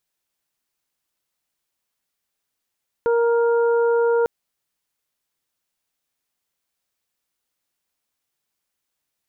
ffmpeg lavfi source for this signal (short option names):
-f lavfi -i "aevalsrc='0.168*sin(2*PI*468*t)+0.0473*sin(2*PI*936*t)+0.0335*sin(2*PI*1404*t)':d=1.2:s=44100"